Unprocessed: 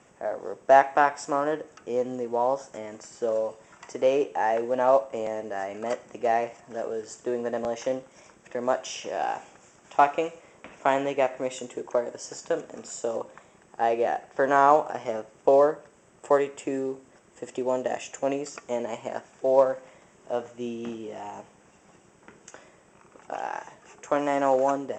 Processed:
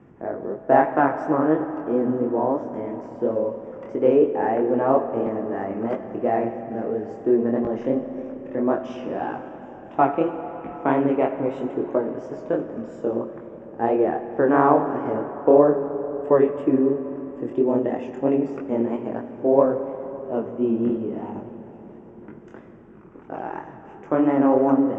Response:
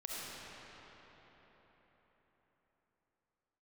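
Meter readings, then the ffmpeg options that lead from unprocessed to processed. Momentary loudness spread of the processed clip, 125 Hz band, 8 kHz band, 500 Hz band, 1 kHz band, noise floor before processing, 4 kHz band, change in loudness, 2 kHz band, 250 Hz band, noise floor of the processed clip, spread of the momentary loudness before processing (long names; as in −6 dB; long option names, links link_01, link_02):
15 LU, +11.5 dB, below −20 dB, +4.0 dB, +0.5 dB, −58 dBFS, below −10 dB, +4.0 dB, −1.5 dB, +13.0 dB, −43 dBFS, 15 LU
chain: -filter_complex "[0:a]lowpass=1600,lowshelf=frequency=440:width_type=q:width=1.5:gain=8.5,flanger=delay=19:depth=7:speed=3,asplit=2[link_01][link_02];[1:a]atrim=start_sample=2205[link_03];[link_02][link_03]afir=irnorm=-1:irlink=0,volume=-9dB[link_04];[link_01][link_04]amix=inputs=2:normalize=0,volume=3.5dB"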